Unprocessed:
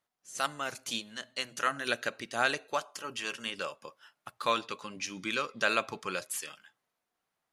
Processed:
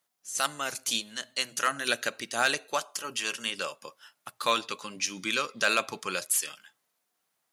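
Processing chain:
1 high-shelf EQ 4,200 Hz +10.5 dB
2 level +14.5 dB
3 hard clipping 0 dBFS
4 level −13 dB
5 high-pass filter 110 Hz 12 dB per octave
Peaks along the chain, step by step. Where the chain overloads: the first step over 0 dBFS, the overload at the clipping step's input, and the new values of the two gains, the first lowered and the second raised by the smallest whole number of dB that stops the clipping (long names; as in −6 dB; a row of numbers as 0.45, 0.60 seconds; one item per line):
−9.0, +5.5, 0.0, −13.0, −12.0 dBFS
step 2, 5.5 dB
step 2 +8.5 dB, step 4 −7 dB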